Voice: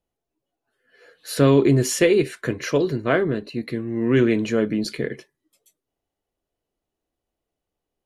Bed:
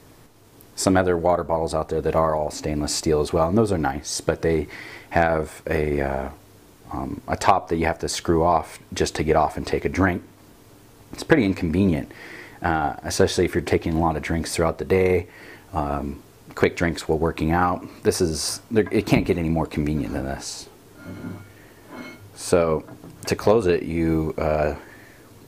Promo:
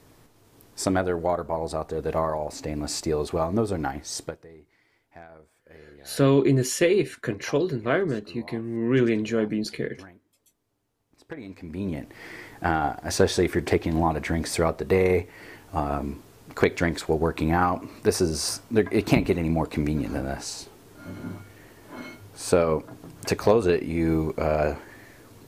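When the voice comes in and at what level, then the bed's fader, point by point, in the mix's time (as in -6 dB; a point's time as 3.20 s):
4.80 s, -3.5 dB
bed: 4.21 s -5.5 dB
4.48 s -27.5 dB
11.09 s -27.5 dB
12.26 s -2 dB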